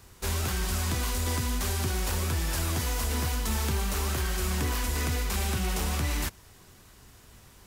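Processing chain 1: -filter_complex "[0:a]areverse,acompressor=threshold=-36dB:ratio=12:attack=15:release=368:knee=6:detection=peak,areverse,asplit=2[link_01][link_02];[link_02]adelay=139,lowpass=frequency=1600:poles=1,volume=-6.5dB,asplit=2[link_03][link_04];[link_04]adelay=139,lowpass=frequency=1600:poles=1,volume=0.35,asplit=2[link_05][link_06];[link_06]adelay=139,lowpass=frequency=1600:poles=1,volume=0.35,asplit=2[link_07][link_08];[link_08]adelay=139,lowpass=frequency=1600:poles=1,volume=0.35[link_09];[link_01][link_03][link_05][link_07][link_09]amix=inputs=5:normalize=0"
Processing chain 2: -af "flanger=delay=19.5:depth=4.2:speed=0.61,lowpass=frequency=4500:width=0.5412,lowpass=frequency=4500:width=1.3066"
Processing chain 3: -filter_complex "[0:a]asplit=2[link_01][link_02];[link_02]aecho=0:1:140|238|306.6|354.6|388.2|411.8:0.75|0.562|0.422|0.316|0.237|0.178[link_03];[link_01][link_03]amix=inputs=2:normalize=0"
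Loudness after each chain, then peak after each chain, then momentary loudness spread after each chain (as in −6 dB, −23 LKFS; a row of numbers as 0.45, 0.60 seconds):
−39.5, −33.5, −26.0 LKFS; −26.0, −21.5, −13.0 dBFS; 13, 2, 3 LU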